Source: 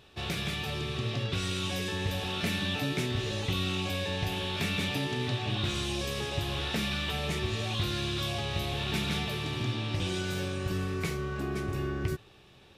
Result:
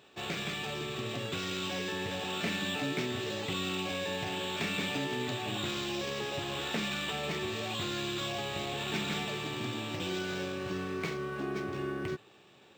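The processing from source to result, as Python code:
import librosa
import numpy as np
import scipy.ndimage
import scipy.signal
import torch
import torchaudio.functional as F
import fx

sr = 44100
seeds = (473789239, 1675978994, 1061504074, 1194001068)

y = scipy.signal.sosfilt(scipy.signal.butter(2, 200.0, 'highpass', fs=sr, output='sos'), x)
y = np.interp(np.arange(len(y)), np.arange(len(y))[::4], y[::4])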